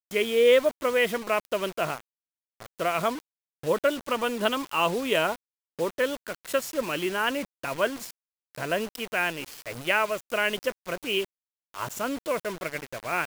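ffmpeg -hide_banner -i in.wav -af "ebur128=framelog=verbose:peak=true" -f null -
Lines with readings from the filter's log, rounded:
Integrated loudness:
  I:         -27.3 LUFS
  Threshold: -37.8 LUFS
Loudness range:
  LRA:         2.7 LU
  Threshold: -48.5 LUFS
  LRA low:   -29.9 LUFS
  LRA high:  -27.1 LUFS
True peak:
  Peak:       -8.8 dBFS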